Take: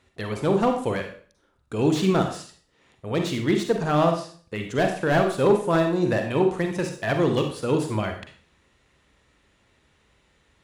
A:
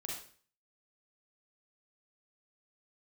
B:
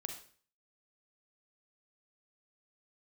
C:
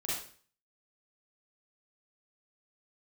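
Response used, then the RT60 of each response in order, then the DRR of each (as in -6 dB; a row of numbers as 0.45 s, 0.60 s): B; 0.45 s, 0.45 s, 0.45 s; -3.0 dB, 4.0 dB, -8.5 dB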